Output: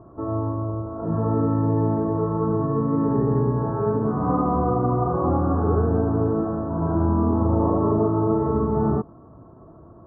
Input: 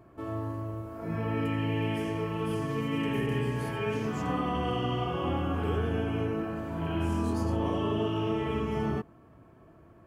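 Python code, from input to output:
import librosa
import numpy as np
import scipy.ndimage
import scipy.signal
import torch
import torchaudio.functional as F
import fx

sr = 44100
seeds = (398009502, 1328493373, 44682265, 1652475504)

y = scipy.signal.sosfilt(scipy.signal.butter(8, 1300.0, 'lowpass', fs=sr, output='sos'), x)
y = y * librosa.db_to_amplitude(9.0)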